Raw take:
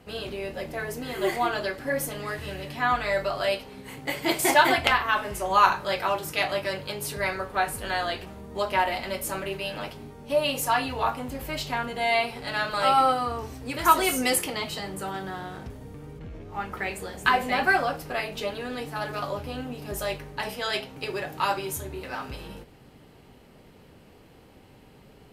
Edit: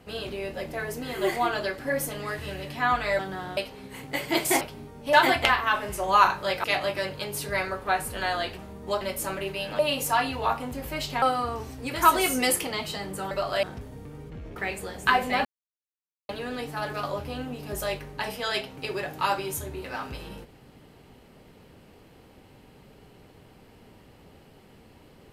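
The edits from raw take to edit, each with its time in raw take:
3.19–3.51 s: swap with 15.14–15.52 s
6.06–6.32 s: delete
8.69–9.06 s: delete
9.84–10.36 s: move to 4.55 s
11.79–13.05 s: delete
16.45–16.75 s: delete
17.64–18.48 s: mute

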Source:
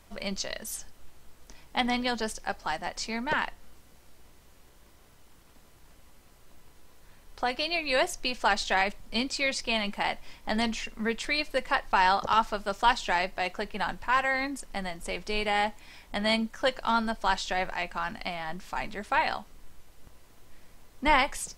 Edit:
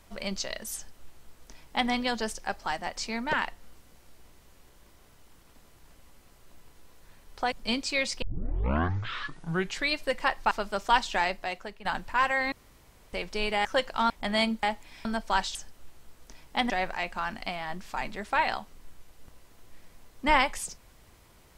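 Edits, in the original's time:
0.75–1.90 s: copy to 17.49 s
7.52–8.99 s: delete
9.69 s: tape start 1.68 s
11.98–12.45 s: delete
13.18–13.79 s: fade out, to -12.5 dB
14.46–15.07 s: room tone
15.59–16.01 s: swap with 16.54–16.99 s

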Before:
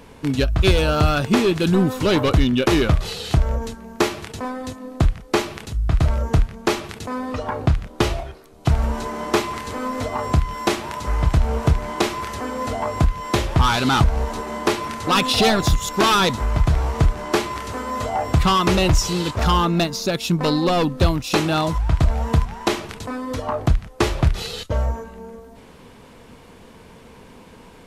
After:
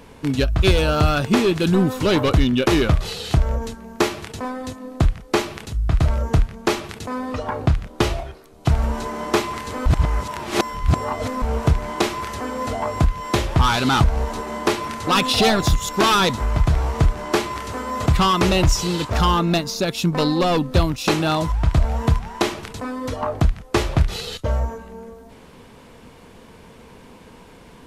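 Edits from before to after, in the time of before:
9.86–11.42 s: reverse
18.06–18.32 s: delete

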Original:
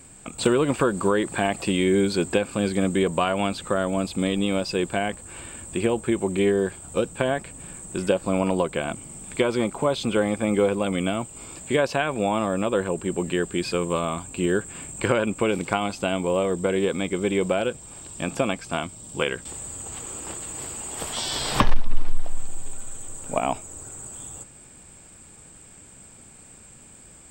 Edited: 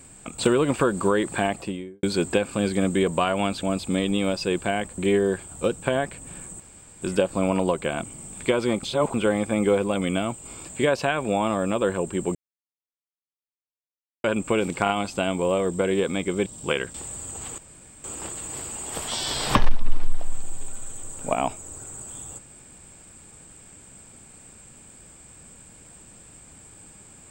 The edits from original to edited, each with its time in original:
1.37–2.03 s: studio fade out
3.63–3.91 s: delete
5.26–6.31 s: delete
7.93 s: insert room tone 0.42 s
9.74–10.05 s: reverse
13.26–15.15 s: mute
15.74 s: stutter 0.03 s, 3 plays
17.31–18.97 s: delete
20.09 s: insert room tone 0.46 s

